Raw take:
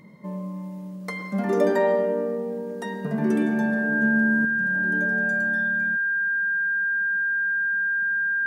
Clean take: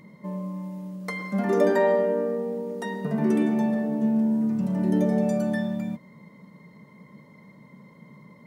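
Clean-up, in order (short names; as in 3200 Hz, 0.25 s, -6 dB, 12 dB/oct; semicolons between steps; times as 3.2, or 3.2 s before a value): notch 1600 Hz, Q 30; gain 0 dB, from 4.45 s +8.5 dB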